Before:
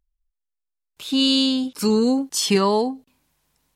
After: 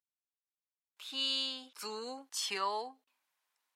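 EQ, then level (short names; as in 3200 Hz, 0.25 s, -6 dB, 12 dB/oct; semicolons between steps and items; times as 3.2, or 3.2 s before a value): HPF 1100 Hz 12 dB/oct; high shelf 2800 Hz -10 dB; -6.0 dB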